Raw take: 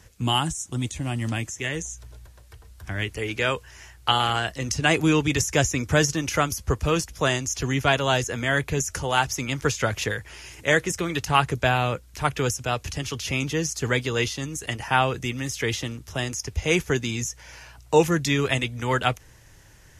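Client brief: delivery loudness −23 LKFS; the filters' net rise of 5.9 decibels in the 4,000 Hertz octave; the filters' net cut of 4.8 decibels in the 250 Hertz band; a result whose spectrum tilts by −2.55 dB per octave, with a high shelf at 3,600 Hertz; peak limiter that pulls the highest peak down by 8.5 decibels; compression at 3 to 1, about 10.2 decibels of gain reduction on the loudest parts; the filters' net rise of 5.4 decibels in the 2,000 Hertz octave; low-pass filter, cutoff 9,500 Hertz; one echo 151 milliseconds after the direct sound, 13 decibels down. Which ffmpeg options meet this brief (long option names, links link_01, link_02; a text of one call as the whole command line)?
ffmpeg -i in.wav -af "lowpass=9500,equalizer=frequency=250:width_type=o:gain=-7.5,equalizer=frequency=2000:width_type=o:gain=5,highshelf=frequency=3600:gain=4,equalizer=frequency=4000:width_type=o:gain=3.5,acompressor=threshold=-25dB:ratio=3,alimiter=limit=-16dB:level=0:latency=1,aecho=1:1:151:0.224,volume=6dB" out.wav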